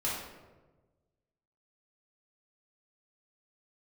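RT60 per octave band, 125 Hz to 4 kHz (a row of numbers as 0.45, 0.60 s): 1.8, 1.5, 1.4, 1.1, 0.90, 0.65 s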